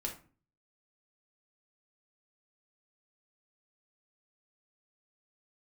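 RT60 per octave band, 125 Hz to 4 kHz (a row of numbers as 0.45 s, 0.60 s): 0.65 s, 0.55 s, 0.40 s, 0.40 s, 0.35 s, 0.25 s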